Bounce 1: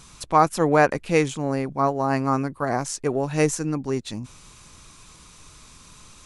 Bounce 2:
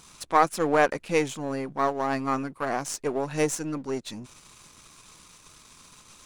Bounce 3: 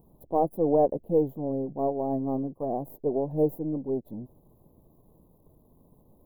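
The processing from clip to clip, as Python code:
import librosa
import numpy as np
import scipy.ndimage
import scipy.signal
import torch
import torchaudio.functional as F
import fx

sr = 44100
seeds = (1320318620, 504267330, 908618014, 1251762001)

y1 = np.where(x < 0.0, 10.0 ** (-7.0 / 20.0) * x, x)
y1 = fx.low_shelf(y1, sr, hz=120.0, db=-11.0)
y2 = scipy.signal.sosfilt(scipy.signal.cheby2(4, 40, [1300.0, 9200.0], 'bandstop', fs=sr, output='sos'), y1)
y2 = y2 * librosa.db_to_amplitude(1.5)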